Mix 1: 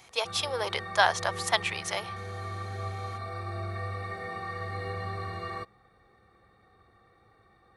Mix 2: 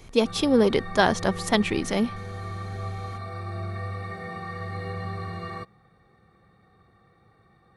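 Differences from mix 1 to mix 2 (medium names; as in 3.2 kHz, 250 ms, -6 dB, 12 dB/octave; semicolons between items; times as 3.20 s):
speech: remove high-pass 670 Hz 24 dB/octave; master: add peaking EQ 160 Hz +10.5 dB 0.94 oct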